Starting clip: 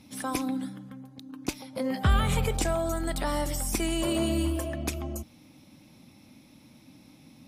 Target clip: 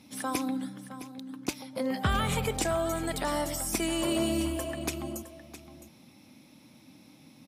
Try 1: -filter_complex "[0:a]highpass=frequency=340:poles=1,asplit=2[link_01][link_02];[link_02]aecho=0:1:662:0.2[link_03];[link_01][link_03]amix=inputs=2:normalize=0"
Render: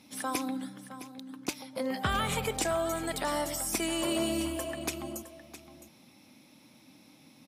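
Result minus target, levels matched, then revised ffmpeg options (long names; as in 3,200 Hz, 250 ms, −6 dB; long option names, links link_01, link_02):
125 Hz band −4.5 dB
-filter_complex "[0:a]highpass=frequency=150:poles=1,asplit=2[link_01][link_02];[link_02]aecho=0:1:662:0.2[link_03];[link_01][link_03]amix=inputs=2:normalize=0"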